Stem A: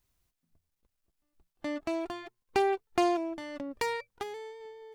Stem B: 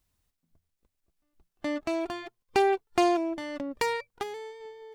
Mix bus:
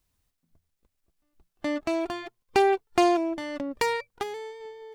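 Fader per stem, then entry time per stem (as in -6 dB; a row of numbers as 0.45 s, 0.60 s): -8.5 dB, +0.5 dB; 0.00 s, 0.00 s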